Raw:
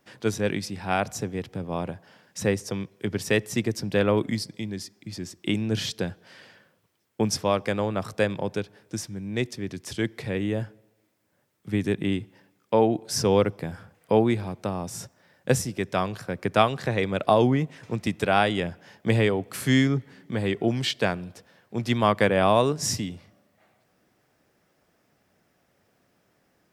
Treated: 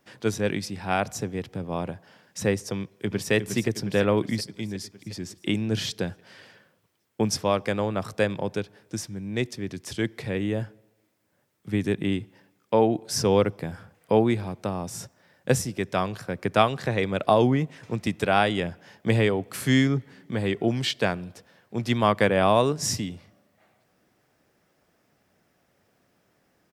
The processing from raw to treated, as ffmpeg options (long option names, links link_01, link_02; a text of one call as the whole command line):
ffmpeg -i in.wav -filter_complex "[0:a]asplit=2[link_01][link_02];[link_02]afade=type=in:start_time=2.75:duration=0.01,afade=type=out:start_time=3.32:duration=0.01,aecho=0:1:360|720|1080|1440|1800|2160|2520|2880|3240:0.421697|0.274103|0.178167|0.115808|0.0752755|0.048929|0.0318039|0.0206725|0.0134371[link_03];[link_01][link_03]amix=inputs=2:normalize=0" out.wav